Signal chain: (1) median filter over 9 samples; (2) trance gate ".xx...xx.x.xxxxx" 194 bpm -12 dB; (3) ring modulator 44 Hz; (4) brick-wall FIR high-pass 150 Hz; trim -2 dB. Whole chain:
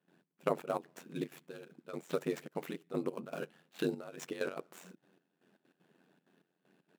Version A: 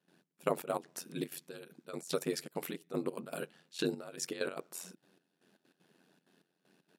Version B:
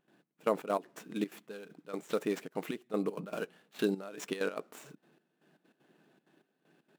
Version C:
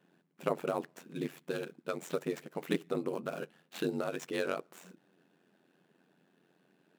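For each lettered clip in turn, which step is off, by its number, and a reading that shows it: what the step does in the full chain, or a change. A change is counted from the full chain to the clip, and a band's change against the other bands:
1, 8 kHz band +10.5 dB; 3, crest factor change -2.0 dB; 2, 4 kHz band +2.0 dB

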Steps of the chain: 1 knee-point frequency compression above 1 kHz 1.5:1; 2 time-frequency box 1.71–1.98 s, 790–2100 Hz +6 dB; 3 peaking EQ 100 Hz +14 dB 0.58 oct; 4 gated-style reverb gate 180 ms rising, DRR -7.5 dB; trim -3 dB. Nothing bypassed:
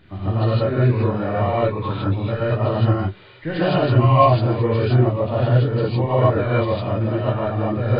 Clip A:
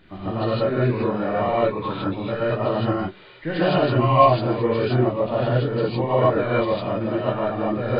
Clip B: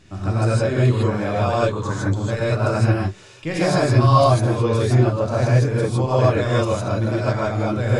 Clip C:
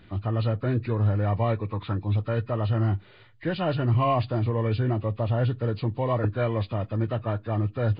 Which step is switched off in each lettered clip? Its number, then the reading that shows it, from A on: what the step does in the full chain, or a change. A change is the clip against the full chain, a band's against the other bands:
3, 125 Hz band -7.5 dB; 1, 2 kHz band +3.0 dB; 4, momentary loudness spread change -2 LU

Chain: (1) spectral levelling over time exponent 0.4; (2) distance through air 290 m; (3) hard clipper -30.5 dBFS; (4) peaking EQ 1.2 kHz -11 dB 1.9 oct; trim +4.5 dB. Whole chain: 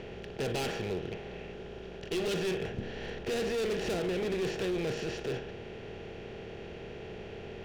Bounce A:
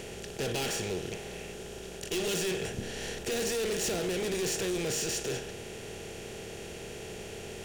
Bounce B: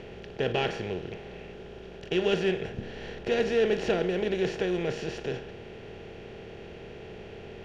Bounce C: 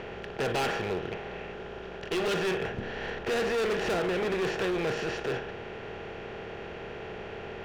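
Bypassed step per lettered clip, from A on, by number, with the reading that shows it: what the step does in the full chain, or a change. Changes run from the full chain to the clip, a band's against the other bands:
2, 8 kHz band +14.0 dB; 3, distortion -6 dB; 4, 1 kHz band +6.5 dB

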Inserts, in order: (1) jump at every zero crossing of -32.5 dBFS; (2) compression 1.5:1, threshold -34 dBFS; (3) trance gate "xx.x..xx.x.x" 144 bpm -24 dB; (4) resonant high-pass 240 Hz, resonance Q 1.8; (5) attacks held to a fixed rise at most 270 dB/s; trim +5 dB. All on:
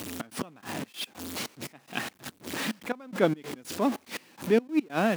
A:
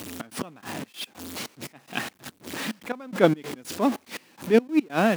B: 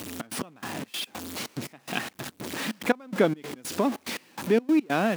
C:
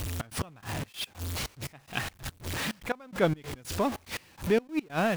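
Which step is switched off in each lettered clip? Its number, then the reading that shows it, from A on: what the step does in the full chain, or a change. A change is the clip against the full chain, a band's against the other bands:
2, momentary loudness spread change +3 LU; 5, loudness change +2.0 LU; 4, 125 Hz band +5.0 dB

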